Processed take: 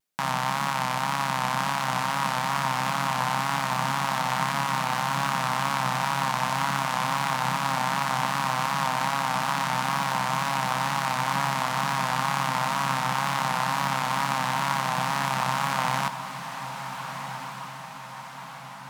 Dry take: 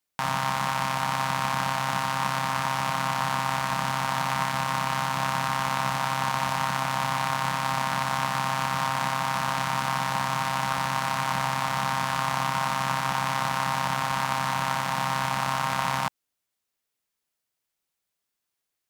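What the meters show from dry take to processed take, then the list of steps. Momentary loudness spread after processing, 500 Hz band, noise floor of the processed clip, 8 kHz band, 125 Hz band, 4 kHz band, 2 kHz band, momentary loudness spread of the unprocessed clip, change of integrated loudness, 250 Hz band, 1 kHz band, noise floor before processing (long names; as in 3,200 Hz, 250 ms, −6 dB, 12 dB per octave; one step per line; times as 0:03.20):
9 LU, +0.5 dB, −40 dBFS, +0.5 dB, 0.0 dB, +0.5 dB, +0.5 dB, 0 LU, +0.5 dB, +1.5 dB, +1.0 dB, −83 dBFS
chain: low shelf with overshoot 120 Hz −6.5 dB, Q 1.5
tape wow and flutter 67 cents
feedback delay with all-pass diffusion 1,444 ms, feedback 54%, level −9.5 dB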